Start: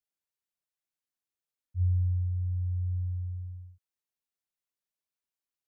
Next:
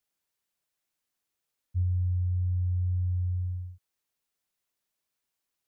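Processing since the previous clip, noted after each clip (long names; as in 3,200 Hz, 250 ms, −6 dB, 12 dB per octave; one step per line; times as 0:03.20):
downward compressor, threshold −34 dBFS, peak gain reduction 10 dB
level +8 dB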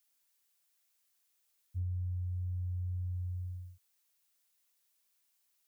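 spectral tilt +2.5 dB per octave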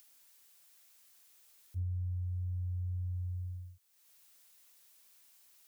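upward compression, threshold −51 dBFS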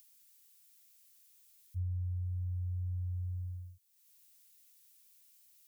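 drawn EQ curve 190 Hz 0 dB, 380 Hz −24 dB, 2,400 Hz −6 dB, 14,000 Hz 0 dB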